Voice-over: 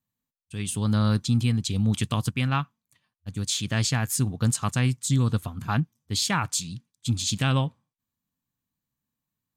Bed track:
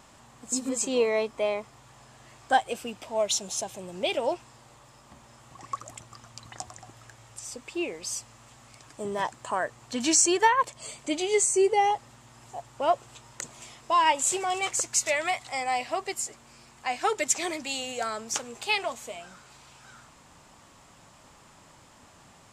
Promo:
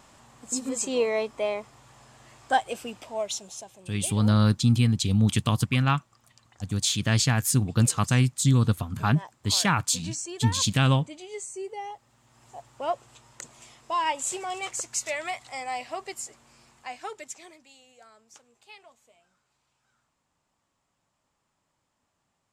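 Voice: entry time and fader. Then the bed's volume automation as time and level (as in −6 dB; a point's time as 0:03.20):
3.35 s, +2.0 dB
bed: 0:02.97 −0.5 dB
0:03.96 −14 dB
0:11.99 −14 dB
0:12.51 −4.5 dB
0:16.70 −4.5 dB
0:17.74 −22.5 dB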